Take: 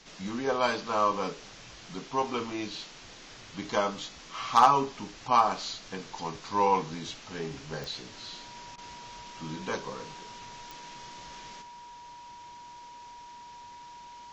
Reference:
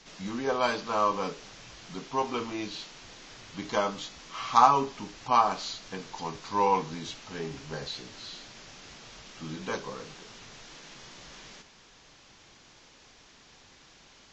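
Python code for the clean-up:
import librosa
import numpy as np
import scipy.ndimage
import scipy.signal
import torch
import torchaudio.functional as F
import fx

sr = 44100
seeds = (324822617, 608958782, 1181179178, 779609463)

y = fx.fix_declip(x, sr, threshold_db=-10.0)
y = fx.fix_declick_ar(y, sr, threshold=10.0)
y = fx.notch(y, sr, hz=960.0, q=30.0)
y = fx.fix_interpolate(y, sr, at_s=(8.76,), length_ms=18.0)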